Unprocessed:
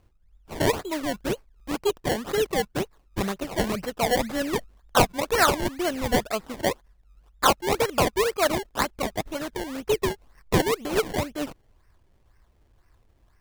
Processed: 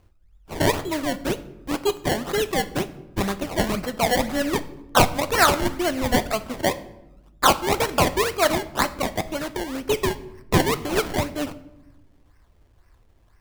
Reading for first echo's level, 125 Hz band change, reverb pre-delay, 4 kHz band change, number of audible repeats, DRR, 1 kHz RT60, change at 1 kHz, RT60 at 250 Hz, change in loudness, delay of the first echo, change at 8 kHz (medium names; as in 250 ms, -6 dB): no echo, +3.5 dB, 12 ms, +3.5 dB, no echo, 11.0 dB, 0.85 s, +3.0 dB, 1.6 s, +2.5 dB, no echo, +3.0 dB